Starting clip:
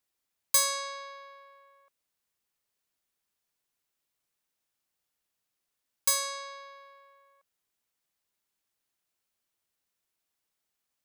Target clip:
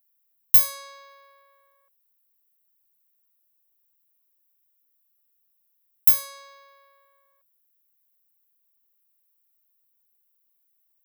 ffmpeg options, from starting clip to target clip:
ffmpeg -i in.wav -af "aexciter=amount=12.8:drive=3.2:freq=11000,aeval=exprs='3.16*(cos(1*acos(clip(val(0)/3.16,-1,1)))-cos(1*PI/2))+0.501*(cos(5*acos(clip(val(0)/3.16,-1,1)))-cos(5*PI/2))':channel_layout=same,volume=-11dB" out.wav

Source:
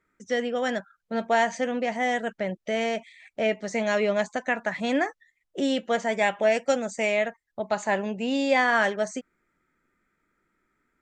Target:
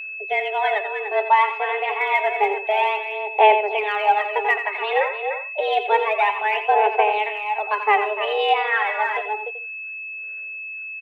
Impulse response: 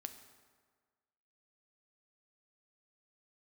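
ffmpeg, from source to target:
-filter_complex "[0:a]asplit=2[link_01][link_02];[link_02]adelay=297.4,volume=-8dB,highshelf=frequency=4000:gain=-6.69[link_03];[link_01][link_03]amix=inputs=2:normalize=0,alimiter=limit=-15.5dB:level=0:latency=1:release=389,highpass=frequency=150:width_type=q:width=0.5412,highpass=frequency=150:width_type=q:width=1.307,lowpass=frequency=3100:width_type=q:width=0.5176,lowpass=frequency=3100:width_type=q:width=0.7071,lowpass=frequency=3100:width_type=q:width=1.932,afreqshift=210,aphaser=in_gain=1:out_gain=1:delay=3.8:decay=0.64:speed=0.29:type=sinusoidal,asplit=2[link_04][link_05];[1:a]atrim=start_sample=2205,afade=type=out:start_time=0.14:duration=0.01,atrim=end_sample=6615,adelay=87[link_06];[link_05][link_06]afir=irnorm=-1:irlink=0,volume=-5.5dB[link_07];[link_04][link_07]amix=inputs=2:normalize=0,aeval=exprs='val(0)+0.02*sin(2*PI*2600*n/s)':channel_layout=same,volume=4dB"

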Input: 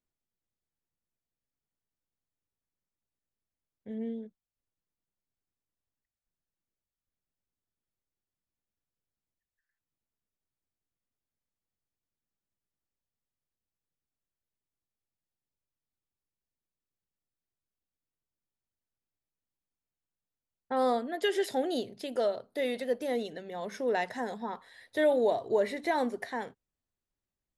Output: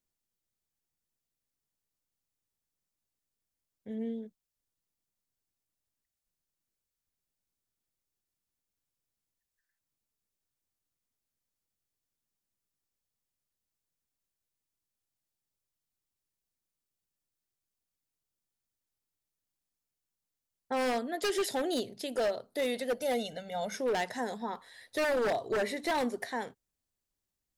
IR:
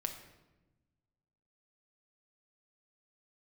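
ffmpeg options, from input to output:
-filter_complex "[0:a]asettb=1/sr,asplit=3[link_01][link_02][link_03];[link_01]atrim=end=22.974[link_04];[link_02]atrim=start=22.97:end=23.75,asetpts=PTS-STARTPTS,afade=type=in:duration=0.004:curve=qsin,afade=type=out:start_time=0.776:duration=0.004:curve=qsin,aecho=1:1:1.4:0.84,atrim=end_sample=34398[link_05];[link_03]atrim=start=23.746[link_06];[link_04][link_05]acrossfade=duration=0.004:curve1=hsin:curve2=qsin[link_07];[link_07][link_06]acrossfade=duration=0.004:curve1=qsin:curve2=hsin,acrossover=split=4200[link_08][link_09];[link_09]acontrast=62[link_10];[link_08][link_10]amix=inputs=2:normalize=0,aeval=exprs='0.0631*(abs(mod(val(0)/0.0631+3,4)-2)-1)':channel_layout=same"

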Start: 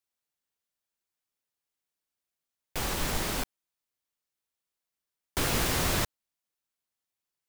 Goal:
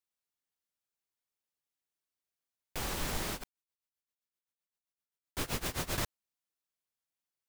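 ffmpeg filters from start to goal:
ffmpeg -i in.wav -filter_complex "[0:a]asettb=1/sr,asplit=3[link_01][link_02][link_03];[link_01]atrim=end=3.334[link_04];[link_02]atrim=start=3.33:end=5.98,asetpts=PTS-STARTPTS,afade=type=in:duration=0.004:curve=qsin,afade=type=out:start_time=2.646:duration=0.004:curve=qsin,tremolo=f=7.7:d=0.92[link_05];[link_03]atrim=start=5.976[link_06];[link_04][link_05]acrossfade=duration=0.004:curve1=hsin:curve2=qsin[link_07];[link_07][link_06]acrossfade=duration=0.004:curve1=qsin:curve2=hsin,volume=-5dB" out.wav

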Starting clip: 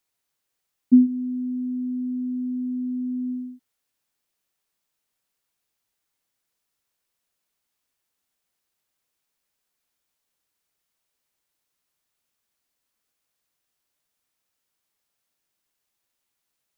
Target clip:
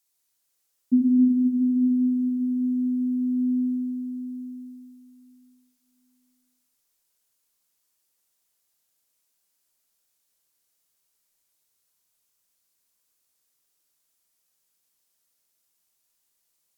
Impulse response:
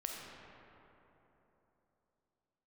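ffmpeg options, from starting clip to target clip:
-filter_complex "[0:a]bass=frequency=250:gain=-1,treble=frequency=4000:gain=12[link_01];[1:a]atrim=start_sample=2205,asetrate=35721,aresample=44100[link_02];[link_01][link_02]afir=irnorm=-1:irlink=0,volume=-3dB"

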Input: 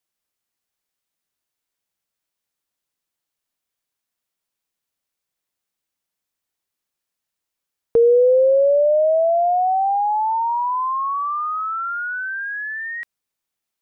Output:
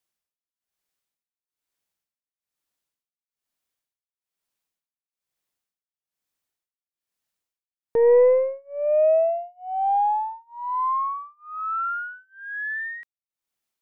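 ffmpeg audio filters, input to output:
ffmpeg -i in.wav -af "aeval=exprs='0.355*(cos(1*acos(clip(val(0)/0.355,-1,1)))-cos(1*PI/2))+0.0501*(cos(2*acos(clip(val(0)/0.355,-1,1)))-cos(2*PI/2))+0.0178*(cos(4*acos(clip(val(0)/0.355,-1,1)))-cos(4*PI/2))+0.00224*(cos(5*acos(clip(val(0)/0.355,-1,1)))-cos(5*PI/2))':channel_layout=same,tremolo=f=1.1:d=0.99,volume=-1dB" out.wav

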